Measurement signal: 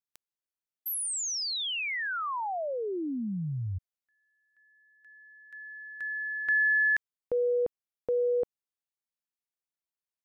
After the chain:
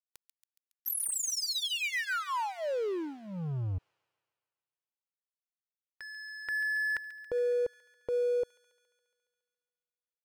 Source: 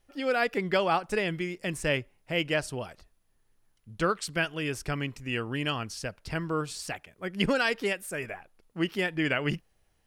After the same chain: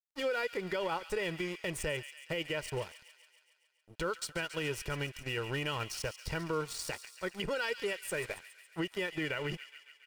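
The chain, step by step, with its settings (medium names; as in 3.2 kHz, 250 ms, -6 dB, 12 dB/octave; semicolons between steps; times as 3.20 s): comb 2.1 ms, depth 64%; crossover distortion -42.5 dBFS; compression 2.5:1, threshold -34 dBFS; on a send: feedback echo behind a high-pass 139 ms, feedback 65%, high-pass 2.3 kHz, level -11 dB; on the sum: peak limiter -27.5 dBFS; trim +2.5 dB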